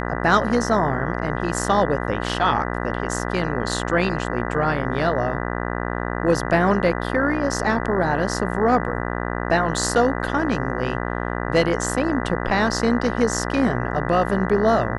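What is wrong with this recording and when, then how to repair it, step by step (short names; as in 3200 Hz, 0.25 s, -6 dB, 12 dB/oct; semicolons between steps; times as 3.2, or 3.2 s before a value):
buzz 60 Hz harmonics 33 -26 dBFS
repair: de-hum 60 Hz, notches 33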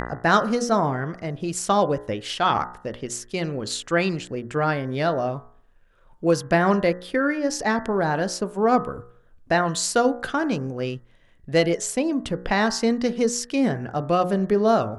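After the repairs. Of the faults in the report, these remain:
none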